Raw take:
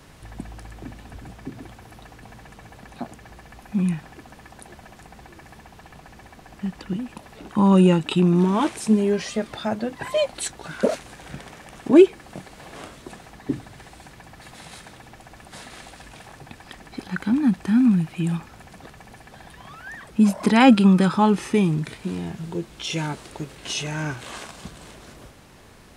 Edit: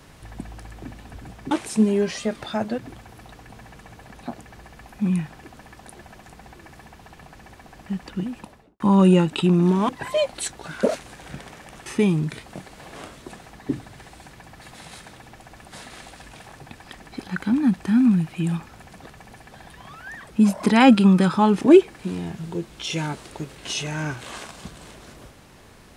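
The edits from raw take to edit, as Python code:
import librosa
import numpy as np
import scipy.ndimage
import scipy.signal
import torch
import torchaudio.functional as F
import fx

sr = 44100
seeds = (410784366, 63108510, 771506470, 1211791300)

y = fx.studio_fade_out(x, sr, start_s=7.1, length_s=0.43)
y = fx.edit(y, sr, fx.move(start_s=8.62, length_s=1.27, to_s=1.51),
    fx.swap(start_s=11.86, length_s=0.38, other_s=21.41, other_length_s=0.58), tone=tone)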